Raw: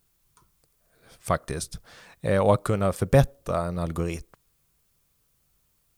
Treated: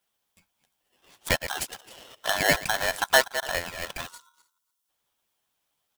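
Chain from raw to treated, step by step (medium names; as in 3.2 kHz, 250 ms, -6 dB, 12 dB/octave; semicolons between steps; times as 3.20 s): chunks repeated in reverse 126 ms, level -11 dB; high-pass 230 Hz 12 dB/octave; harmonic-percussive split harmonic -13 dB; on a send: delay 289 ms -20.5 dB; on the sum: spectral selection erased 4.07–4.88 s, 320–3900 Hz; peaking EQ 2 kHz +15 dB 0.8 oct; waveshaping leveller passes 1; touch-sensitive flanger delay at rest 11.5 ms, full sweep at -21.5 dBFS; polarity switched at an audio rate 1.2 kHz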